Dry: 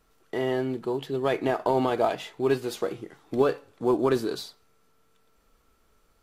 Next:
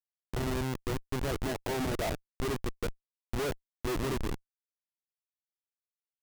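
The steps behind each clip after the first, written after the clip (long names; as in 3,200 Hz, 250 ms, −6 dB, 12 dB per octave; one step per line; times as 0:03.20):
comparator with hysteresis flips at −24.5 dBFS
level −2.5 dB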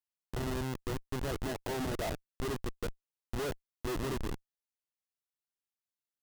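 notch filter 2,300 Hz, Q 15
level −3 dB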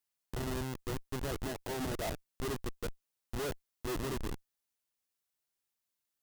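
high-shelf EQ 5,800 Hz +4 dB
brickwall limiter −34 dBFS, peak gain reduction 9 dB
level +4.5 dB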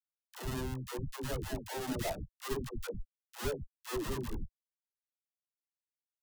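spectral dynamics exaggerated over time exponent 1.5
dead-zone distortion −59 dBFS
all-pass dispersion lows, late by 118 ms, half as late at 400 Hz
level +3.5 dB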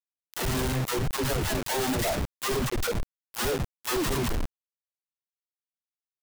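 in parallel at −0.5 dB: brickwall limiter −32.5 dBFS, peak gain reduction 10.5 dB
on the sum: log-companded quantiser 2 bits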